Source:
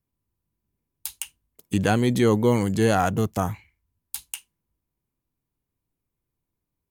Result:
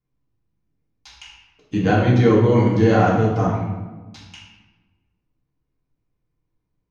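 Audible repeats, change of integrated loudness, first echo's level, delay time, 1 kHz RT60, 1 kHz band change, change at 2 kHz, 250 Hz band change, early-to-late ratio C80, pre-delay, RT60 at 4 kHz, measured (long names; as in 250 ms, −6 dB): no echo audible, +5.5 dB, no echo audible, no echo audible, 1.2 s, +4.5 dB, +3.5 dB, +4.5 dB, 4.0 dB, 3 ms, 0.75 s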